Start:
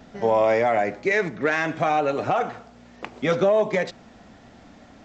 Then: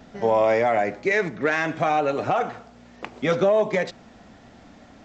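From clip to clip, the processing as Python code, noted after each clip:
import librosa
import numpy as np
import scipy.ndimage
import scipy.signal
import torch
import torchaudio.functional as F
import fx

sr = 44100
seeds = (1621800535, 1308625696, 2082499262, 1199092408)

y = x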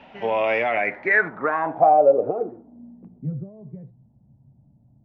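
y = fx.low_shelf(x, sr, hz=150.0, db=-8.5)
y = fx.dmg_noise_band(y, sr, seeds[0], low_hz=560.0, high_hz=960.0, level_db=-48.0)
y = fx.filter_sweep_lowpass(y, sr, from_hz=2700.0, to_hz=130.0, start_s=0.71, end_s=3.4, q=5.8)
y = y * 10.0 ** (-3.0 / 20.0)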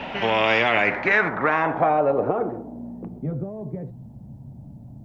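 y = fx.spectral_comp(x, sr, ratio=2.0)
y = y * 10.0 ** (1.5 / 20.0)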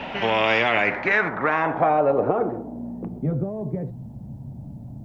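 y = fx.rider(x, sr, range_db=4, speed_s=2.0)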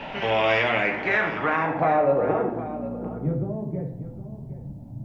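y = x + 10.0 ** (-14.0 / 20.0) * np.pad(x, (int(760 * sr / 1000.0), 0))[:len(x)]
y = fx.room_shoebox(y, sr, seeds[1], volume_m3=110.0, walls='mixed', distance_m=0.56)
y = y * 10.0 ** (-4.0 / 20.0)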